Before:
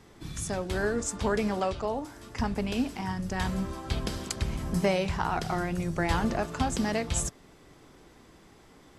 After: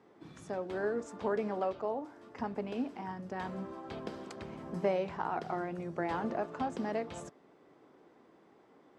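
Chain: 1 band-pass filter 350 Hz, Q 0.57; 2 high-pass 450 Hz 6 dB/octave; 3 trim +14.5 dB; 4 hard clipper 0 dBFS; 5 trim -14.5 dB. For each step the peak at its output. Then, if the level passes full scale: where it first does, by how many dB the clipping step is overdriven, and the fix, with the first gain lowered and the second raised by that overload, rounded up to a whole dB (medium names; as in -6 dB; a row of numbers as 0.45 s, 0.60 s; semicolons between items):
-15.0 dBFS, -19.0 dBFS, -4.5 dBFS, -4.5 dBFS, -19.0 dBFS; nothing clips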